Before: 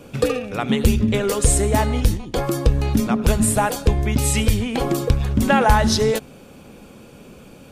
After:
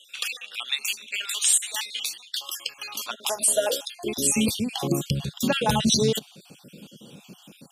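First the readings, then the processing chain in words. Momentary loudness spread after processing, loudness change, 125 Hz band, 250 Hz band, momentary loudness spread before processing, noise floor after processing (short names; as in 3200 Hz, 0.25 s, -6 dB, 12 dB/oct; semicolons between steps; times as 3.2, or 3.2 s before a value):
12 LU, -5.5 dB, -12.5 dB, -8.0 dB, 6 LU, -54 dBFS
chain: random spectral dropouts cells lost 45%; high-pass sweep 1800 Hz -> 160 Hz, 2.64–4.68; resonant high shelf 2500 Hz +7.5 dB, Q 3; gain -5.5 dB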